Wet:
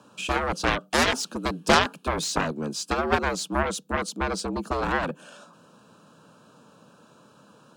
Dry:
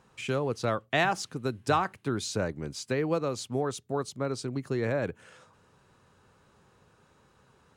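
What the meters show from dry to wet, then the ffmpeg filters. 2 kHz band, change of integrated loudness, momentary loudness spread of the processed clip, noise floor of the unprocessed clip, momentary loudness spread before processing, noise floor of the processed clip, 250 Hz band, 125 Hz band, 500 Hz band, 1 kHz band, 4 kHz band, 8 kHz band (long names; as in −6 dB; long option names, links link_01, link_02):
+7.5 dB, +5.0 dB, 9 LU, −64 dBFS, 7 LU, −56 dBFS, +3.5 dB, −0.5 dB, +2.0 dB, +6.5 dB, +9.5 dB, +8.0 dB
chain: -af "afreqshift=72,asuperstop=centerf=2000:order=4:qfactor=2.4,aeval=exprs='0.237*(cos(1*acos(clip(val(0)/0.237,-1,1)))-cos(1*PI/2))+0.075*(cos(7*acos(clip(val(0)/0.237,-1,1)))-cos(7*PI/2))':channel_layout=same,volume=6.5dB"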